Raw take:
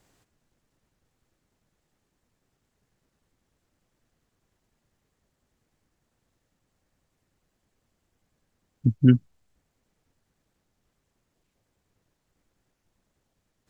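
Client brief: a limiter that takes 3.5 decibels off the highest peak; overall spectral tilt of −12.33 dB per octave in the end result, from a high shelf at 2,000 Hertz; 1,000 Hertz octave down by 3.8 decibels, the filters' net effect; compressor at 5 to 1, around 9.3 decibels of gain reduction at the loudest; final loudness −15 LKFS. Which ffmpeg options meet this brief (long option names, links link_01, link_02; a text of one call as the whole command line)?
ffmpeg -i in.wav -af "equalizer=frequency=1000:width_type=o:gain=-5,highshelf=frequency=2000:gain=-3.5,acompressor=threshold=-21dB:ratio=5,volume=16.5dB,alimiter=limit=-1dB:level=0:latency=1" out.wav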